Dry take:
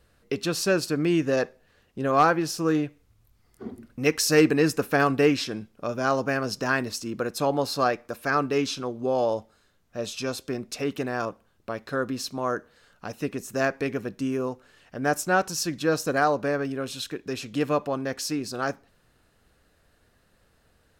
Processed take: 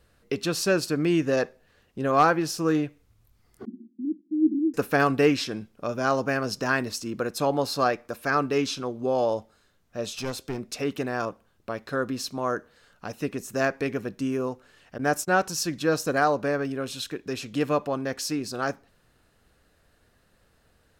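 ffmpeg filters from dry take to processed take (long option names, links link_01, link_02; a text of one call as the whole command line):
ffmpeg -i in.wav -filter_complex "[0:a]asettb=1/sr,asplit=3[link_01][link_02][link_03];[link_01]atrim=end=3.654[link_04];[link_02]atrim=start=3.65:end=4.74,asetpts=PTS-STARTPTS,afade=type=in:duration=0.004:curve=qsin,afade=type=out:start_time=1.086:duration=0.004:curve=qsin,asuperpass=centerf=260:order=20:qfactor=1.6[link_05];[link_03]atrim=start=4.736[link_06];[link_04][link_05]acrossfade=duration=0.004:curve1=hsin:curve2=qsin[link_07];[link_07][link_06]acrossfade=duration=0.004:curve1=qsin:curve2=hsin,asettb=1/sr,asplit=3[link_08][link_09][link_10];[link_08]atrim=end=10.144[link_11];[link_09]atrim=start=10.14:end=10.59,asetpts=PTS-STARTPTS,afade=type=in:duration=0.004:curve=qsin,afade=type=out:start_time=0.446:duration=0.004:curve=qsin,aeval=exprs='clip(val(0),-1,0.0237)':channel_layout=same[link_12];[link_10]atrim=start=10.586[link_13];[link_11][link_12]acrossfade=duration=0.004:curve1=hsin:curve2=qsin[link_14];[link_14][link_13]acrossfade=duration=0.004:curve1=qsin:curve2=hsin,asettb=1/sr,asplit=3[link_15][link_16][link_17];[link_15]atrim=end=14.984[link_18];[link_16]atrim=start=14.98:end=15.44,asetpts=PTS-STARTPTS,afade=type=in:duration=0.004:curve=qsin,afade=type=out:start_time=0.456:duration=0.004:curve=qsin,agate=range=-21dB:threshold=-36dB:ratio=16:release=100:detection=peak[link_19];[link_17]atrim=start=15.436[link_20];[link_18][link_19]acrossfade=duration=0.004:curve1=hsin:curve2=qsin[link_21];[link_21][link_20]acrossfade=duration=0.004:curve1=qsin:curve2=hsin" out.wav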